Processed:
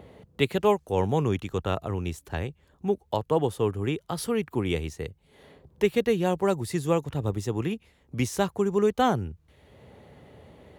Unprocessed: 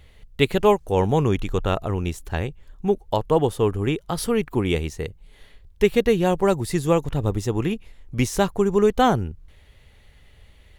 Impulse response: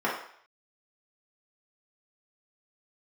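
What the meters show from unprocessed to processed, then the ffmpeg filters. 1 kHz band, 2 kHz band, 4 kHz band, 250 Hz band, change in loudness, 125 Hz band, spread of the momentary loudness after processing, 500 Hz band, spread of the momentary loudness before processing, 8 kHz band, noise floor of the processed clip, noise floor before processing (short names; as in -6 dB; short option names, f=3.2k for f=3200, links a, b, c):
-5.0 dB, -5.0 dB, -5.0 dB, -5.0 dB, -5.0 dB, -5.0 dB, 10 LU, -5.0 dB, 10 LU, -5.0 dB, -64 dBFS, -52 dBFS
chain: -filter_complex "[0:a]highpass=f=63:w=0.5412,highpass=f=63:w=1.3066,acrossover=split=140|970[a][b][c];[b]acompressor=mode=upward:threshold=-30dB:ratio=2.5[d];[a][d][c]amix=inputs=3:normalize=0,volume=-5dB"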